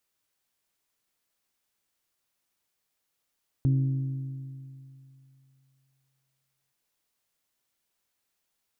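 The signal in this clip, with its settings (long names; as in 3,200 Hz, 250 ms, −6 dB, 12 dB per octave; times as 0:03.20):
struck metal bell, length 3.07 s, lowest mode 134 Hz, decay 2.71 s, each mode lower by 10 dB, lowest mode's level −19 dB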